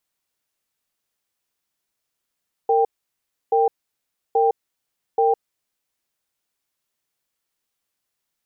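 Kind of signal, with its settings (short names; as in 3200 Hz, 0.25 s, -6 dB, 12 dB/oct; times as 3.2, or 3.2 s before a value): cadence 458 Hz, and 789 Hz, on 0.16 s, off 0.67 s, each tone -17 dBFS 3.25 s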